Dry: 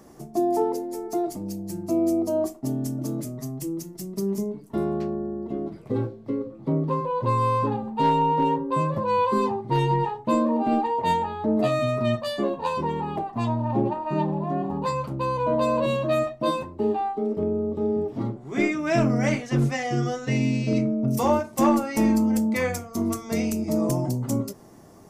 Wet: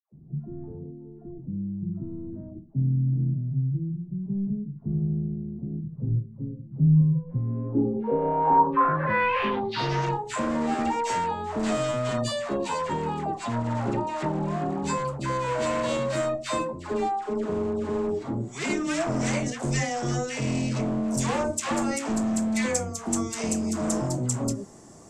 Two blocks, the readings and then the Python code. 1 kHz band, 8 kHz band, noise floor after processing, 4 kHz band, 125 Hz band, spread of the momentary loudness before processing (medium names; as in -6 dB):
-2.0 dB, +6.0 dB, -44 dBFS, +1.5 dB, +1.0 dB, 8 LU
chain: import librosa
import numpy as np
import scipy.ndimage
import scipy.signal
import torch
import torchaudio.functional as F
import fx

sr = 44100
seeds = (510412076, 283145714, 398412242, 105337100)

y = np.clip(10.0 ** (24.0 / 20.0) * x, -1.0, 1.0) / 10.0 ** (24.0 / 20.0)
y = fx.dispersion(y, sr, late='lows', ms=126.0, hz=940.0)
y = fx.filter_sweep_lowpass(y, sr, from_hz=150.0, to_hz=7700.0, start_s=7.24, end_s=10.18, q=4.5)